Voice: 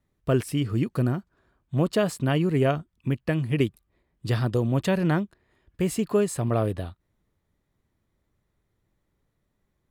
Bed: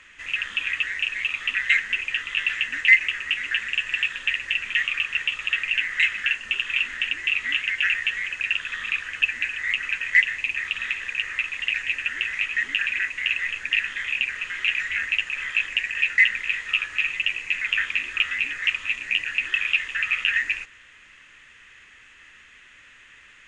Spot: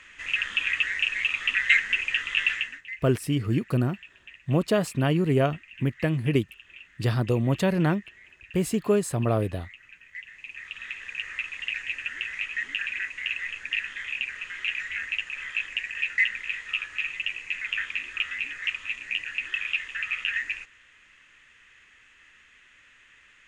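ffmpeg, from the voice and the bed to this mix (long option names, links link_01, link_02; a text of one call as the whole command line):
ffmpeg -i stem1.wav -i stem2.wav -filter_complex "[0:a]adelay=2750,volume=0dB[link_01];[1:a]volume=17.5dB,afade=type=out:start_time=2.48:duration=0.33:silence=0.0668344,afade=type=in:start_time=10.19:duration=1.11:silence=0.133352[link_02];[link_01][link_02]amix=inputs=2:normalize=0" out.wav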